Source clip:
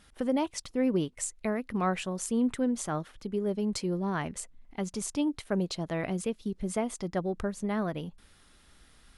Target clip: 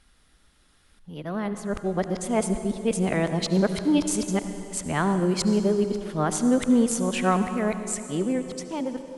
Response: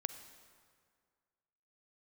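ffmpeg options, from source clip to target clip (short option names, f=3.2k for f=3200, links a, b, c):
-filter_complex "[0:a]areverse,dynaudnorm=f=510:g=7:m=11dB[a];[1:a]atrim=start_sample=2205,asetrate=28224,aresample=44100[b];[a][b]afir=irnorm=-1:irlink=0,volume=-4.5dB"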